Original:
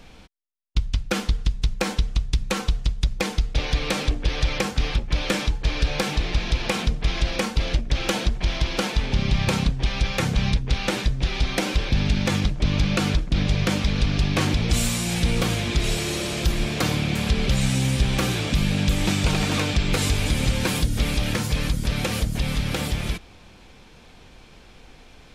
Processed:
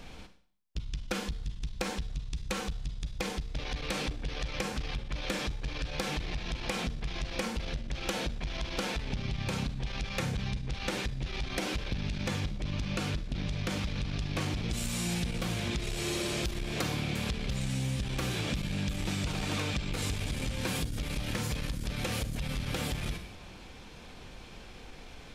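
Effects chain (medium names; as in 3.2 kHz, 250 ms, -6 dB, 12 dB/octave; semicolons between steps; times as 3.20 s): Schroeder reverb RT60 0.51 s, combs from 31 ms, DRR 9 dB; compression, threshold -29 dBFS, peak gain reduction 14 dB; transformer saturation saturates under 180 Hz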